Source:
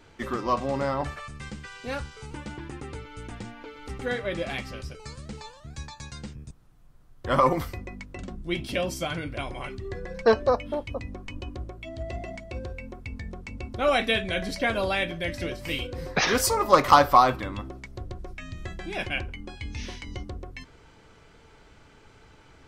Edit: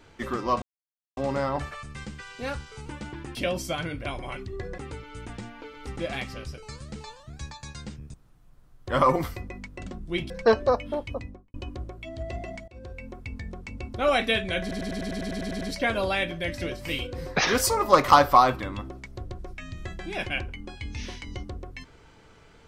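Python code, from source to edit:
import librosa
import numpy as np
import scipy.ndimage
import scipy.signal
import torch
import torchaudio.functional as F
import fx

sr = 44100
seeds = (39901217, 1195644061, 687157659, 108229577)

y = fx.studio_fade_out(x, sr, start_s=10.93, length_s=0.41)
y = fx.edit(y, sr, fx.insert_silence(at_s=0.62, length_s=0.55),
    fx.cut(start_s=4.01, length_s=0.35),
    fx.move(start_s=8.67, length_s=1.43, to_s=2.8),
    fx.fade_in_from(start_s=12.48, length_s=0.52, curve='qsin', floor_db=-23.0),
    fx.stutter(start_s=14.41, slice_s=0.1, count=11), tone=tone)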